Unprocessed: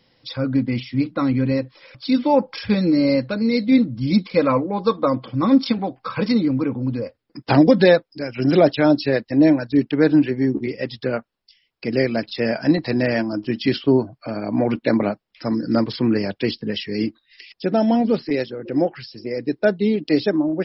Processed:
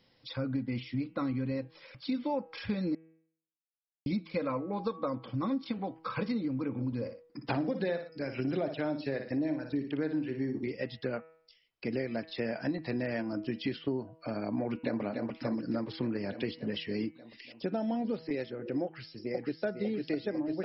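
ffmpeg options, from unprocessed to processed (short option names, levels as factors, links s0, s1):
-filter_complex "[0:a]asplit=3[s0][s1][s2];[s0]afade=t=out:st=6.76:d=0.02[s3];[s1]aecho=1:1:58|118:0.335|0.1,afade=t=in:st=6.76:d=0.02,afade=t=out:st=10.66:d=0.02[s4];[s2]afade=t=in:st=10.66:d=0.02[s5];[s3][s4][s5]amix=inputs=3:normalize=0,asplit=2[s6][s7];[s7]afade=t=in:st=14.54:d=0.01,afade=t=out:st=15.02:d=0.01,aecho=0:1:290|580|870|1160|1450|1740|2030|2320|2610|2900|3190:0.398107|0.278675|0.195073|0.136551|0.0955855|0.0669099|0.0468369|0.0327858|0.0229501|0.0160651|0.0112455[s8];[s6][s8]amix=inputs=2:normalize=0,asplit=2[s9][s10];[s10]afade=t=in:st=18.84:d=0.01,afade=t=out:st=19.64:d=0.01,aecho=0:1:500|1000|1500|2000|2500|3000|3500|4000|4500|5000|5500|6000:0.707946|0.495562|0.346893|0.242825|0.169978|0.118984|0.0832891|0.0583024|0.0408117|0.0285682|0.0199977|0.0139984[s11];[s9][s11]amix=inputs=2:normalize=0,asplit=3[s12][s13][s14];[s12]atrim=end=2.95,asetpts=PTS-STARTPTS,afade=t=out:st=2.946:d=0.004:c=hsin[s15];[s13]atrim=start=2.95:end=4.06,asetpts=PTS-STARTPTS,volume=0[s16];[s14]atrim=start=4.06,asetpts=PTS-STARTPTS,afade=t=in:d=0.004:c=hsin[s17];[s15][s16][s17]concat=n=3:v=0:a=1,acrossover=split=4100[s18][s19];[s19]acompressor=threshold=0.00355:ratio=4:attack=1:release=60[s20];[s18][s20]amix=inputs=2:normalize=0,bandreject=f=161.3:t=h:w=4,bandreject=f=322.6:t=h:w=4,bandreject=f=483.9:t=h:w=4,bandreject=f=645.2:t=h:w=4,bandreject=f=806.5:t=h:w=4,bandreject=f=967.8:t=h:w=4,bandreject=f=1129.1:t=h:w=4,bandreject=f=1290.4:t=h:w=4,bandreject=f=1451.7:t=h:w=4,bandreject=f=1613:t=h:w=4,bandreject=f=1774.3:t=h:w=4,bandreject=f=1935.6:t=h:w=4,bandreject=f=2096.9:t=h:w=4,bandreject=f=2258.2:t=h:w=4,bandreject=f=2419.5:t=h:w=4,bandreject=f=2580.8:t=h:w=4,bandreject=f=2742.1:t=h:w=4,bandreject=f=2903.4:t=h:w=4,bandreject=f=3064.7:t=h:w=4,acompressor=threshold=0.0708:ratio=5,volume=0.447"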